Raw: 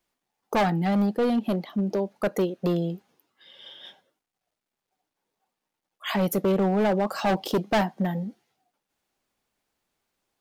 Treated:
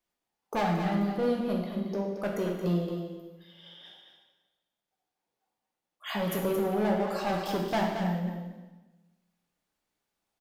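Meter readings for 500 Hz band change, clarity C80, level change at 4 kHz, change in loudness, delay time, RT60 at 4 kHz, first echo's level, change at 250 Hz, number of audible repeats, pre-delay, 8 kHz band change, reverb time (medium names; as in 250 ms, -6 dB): -4.0 dB, 3.5 dB, -4.5 dB, -4.5 dB, 224 ms, 1.1 s, -8.0 dB, -5.0 dB, 1, 8 ms, -4.5 dB, 1.2 s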